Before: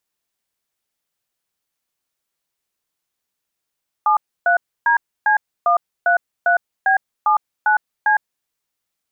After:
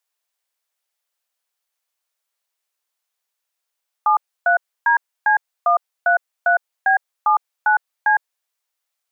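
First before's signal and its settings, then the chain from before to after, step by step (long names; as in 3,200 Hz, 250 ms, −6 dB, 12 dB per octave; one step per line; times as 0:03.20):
touch tones "73DC133B79C", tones 109 ms, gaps 291 ms, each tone −14.5 dBFS
high-pass filter 510 Hz 24 dB per octave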